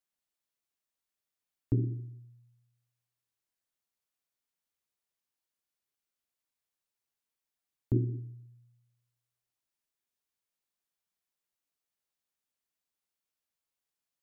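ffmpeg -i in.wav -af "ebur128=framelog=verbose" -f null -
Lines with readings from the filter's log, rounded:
Integrated loudness:
  I:         -33.6 LUFS
  Threshold: -46.2 LUFS
Loudness range:
  LRA:         5.4 LU
  Threshold: -61.2 LUFS
  LRA low:   -45.7 LUFS
  LRA high:  -40.3 LUFS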